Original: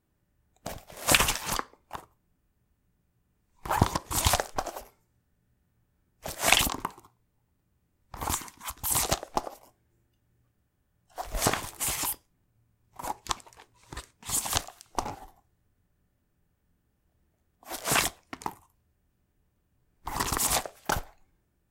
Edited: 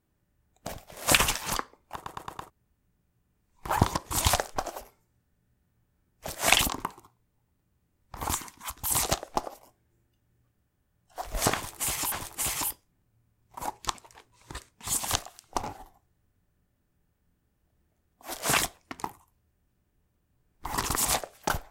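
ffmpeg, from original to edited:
-filter_complex "[0:a]asplit=7[a][b][c][d][e][f][g];[a]atrim=end=2.062[h];[b]atrim=start=1.948:end=2.062[i];[c]atrim=start=1.948:end=2.062[j];[d]atrim=start=1.948:end=2.062[k];[e]atrim=start=1.948:end=2.062[l];[f]atrim=start=2.498:end=12.122[m];[g]atrim=start=11.538[n];[h][i]acrossfade=d=0.004:c1=hsin:c2=hsin[o];[o][j]acrossfade=d=0.004:c1=hsin:c2=hsin[p];[p][k]acrossfade=d=0.004:c1=hsin:c2=hsin[q];[q][l]acrossfade=d=0.004:c1=hsin:c2=hsin[r];[r][m]acrossfade=d=0.004:c1=hsin:c2=hsin[s];[s][n]acrossfade=d=0.004:c1=hsin:c2=hsin"

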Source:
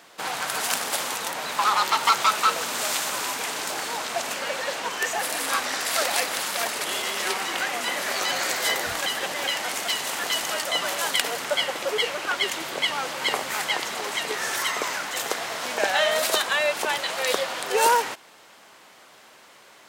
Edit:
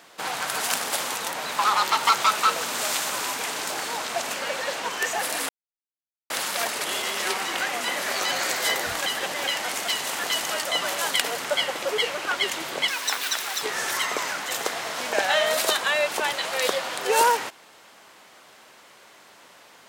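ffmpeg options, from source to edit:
-filter_complex "[0:a]asplit=5[a][b][c][d][e];[a]atrim=end=5.49,asetpts=PTS-STARTPTS,afade=t=out:st=5.486:d=0.004:c=hsin[f];[b]atrim=start=5.49:end=6.3,asetpts=PTS-STARTPTS,volume=0[g];[c]atrim=start=6.3:end=12.884,asetpts=PTS-STARTPTS,afade=t=in:d=0.004:c=hsin[h];[d]atrim=start=12.88:end=14.28,asetpts=PTS-STARTPTS,asetrate=82467,aresample=44100,atrim=end_sample=33016,asetpts=PTS-STARTPTS[i];[e]atrim=start=14.276[j];[f][g][h]concat=n=3:v=0:a=1[k];[k][i]acrossfade=d=0.004:c1=hsin:c2=hsin[l];[l][j]acrossfade=d=0.004:c1=hsin:c2=hsin"

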